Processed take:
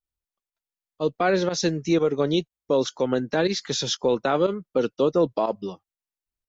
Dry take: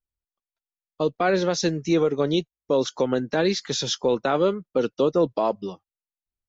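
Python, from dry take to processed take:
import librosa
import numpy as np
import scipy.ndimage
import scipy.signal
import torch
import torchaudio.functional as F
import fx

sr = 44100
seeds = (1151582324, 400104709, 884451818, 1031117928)

y = fx.volume_shaper(x, sr, bpm=121, per_beat=1, depth_db=-13, release_ms=76.0, shape='fast start')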